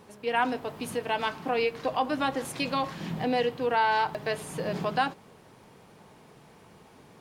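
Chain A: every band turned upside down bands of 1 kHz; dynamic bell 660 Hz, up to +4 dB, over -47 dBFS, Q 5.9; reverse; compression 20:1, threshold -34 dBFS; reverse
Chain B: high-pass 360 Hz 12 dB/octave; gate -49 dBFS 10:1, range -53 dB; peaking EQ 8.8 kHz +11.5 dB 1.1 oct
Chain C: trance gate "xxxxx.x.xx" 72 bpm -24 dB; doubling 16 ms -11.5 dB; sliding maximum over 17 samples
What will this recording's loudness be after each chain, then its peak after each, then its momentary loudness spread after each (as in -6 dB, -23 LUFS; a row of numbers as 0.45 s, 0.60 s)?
-39.0 LUFS, -29.0 LUFS, -30.5 LUFS; -22.5 dBFS, -12.0 dBFS, -13.0 dBFS; 16 LU, 7 LU, 8 LU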